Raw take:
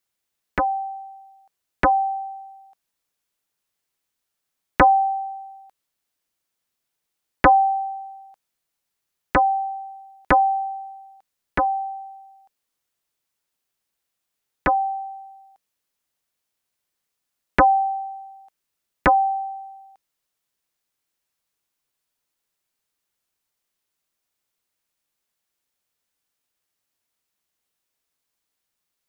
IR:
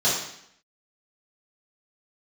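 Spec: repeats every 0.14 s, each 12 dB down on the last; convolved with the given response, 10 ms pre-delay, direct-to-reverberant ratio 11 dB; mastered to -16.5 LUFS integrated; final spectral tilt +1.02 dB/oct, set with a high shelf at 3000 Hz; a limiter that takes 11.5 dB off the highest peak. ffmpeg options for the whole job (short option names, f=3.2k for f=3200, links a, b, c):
-filter_complex "[0:a]highshelf=f=3k:g=3,alimiter=limit=-17dB:level=0:latency=1,aecho=1:1:140|280|420:0.251|0.0628|0.0157,asplit=2[a][b];[1:a]atrim=start_sample=2205,adelay=10[c];[b][c]afir=irnorm=-1:irlink=0,volume=-26dB[d];[a][d]amix=inputs=2:normalize=0,volume=6dB"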